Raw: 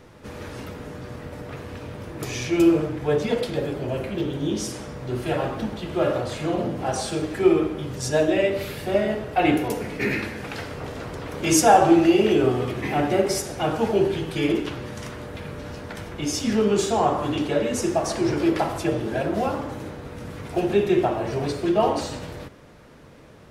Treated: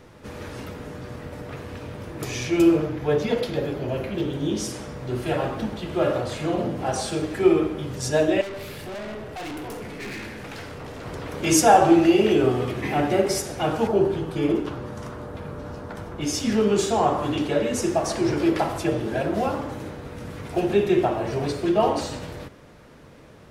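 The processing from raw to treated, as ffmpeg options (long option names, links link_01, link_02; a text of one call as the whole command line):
ffmpeg -i in.wav -filter_complex "[0:a]asettb=1/sr,asplit=3[link_01][link_02][link_03];[link_01]atrim=end=2.764[link_04];[link_02]atrim=start=2.76:end=4.14,asetpts=PTS-STARTPTS,afade=type=in:duration=0.004:curve=qsin,afade=type=out:start_time=1.376:duration=0.004:curve=qsin,equalizer=frequency=8400:width_type=o:width=0.24:gain=-10.5[link_05];[link_03]atrim=start=4.136[link_06];[link_04][link_05]acrossfade=duration=0.004:curve1=hsin:curve2=qsin[link_07];[link_07][link_06]acrossfade=duration=0.004:curve1=qsin:curve2=hsin,asettb=1/sr,asplit=3[link_08][link_09][link_10];[link_08]atrim=end=8.414[link_11];[link_09]atrim=start=8.41:end=11.06,asetpts=PTS-STARTPTS,afade=type=in:duration=0.004:curve=qsin,afade=type=out:start_time=2.646:duration=0.004:curve=qsin,aeval=exprs='(tanh(39.8*val(0)+0.2)-tanh(0.2))/39.8':channel_layout=same[link_12];[link_10]atrim=start=11.056[link_13];[link_11][link_12]acrossfade=duration=0.004:curve1=hsin:curve2=qsin[link_14];[link_14][link_13]acrossfade=duration=0.004:curve1=qsin:curve2=hsin,asettb=1/sr,asplit=3[link_15][link_16][link_17];[link_15]atrim=end=13.874[link_18];[link_16]atrim=start=13.87:end=16.21,asetpts=PTS-STARTPTS,afade=type=in:duration=0.004:curve=qsin,afade=type=out:start_time=2.336:duration=0.004:curve=qsin,highshelf=frequency=1600:width_type=q:width=1.5:gain=-6.5[link_19];[link_17]atrim=start=16.206[link_20];[link_18][link_19]acrossfade=duration=0.004:curve1=hsin:curve2=qsin[link_21];[link_21][link_20]acrossfade=duration=0.004:curve1=qsin:curve2=hsin" out.wav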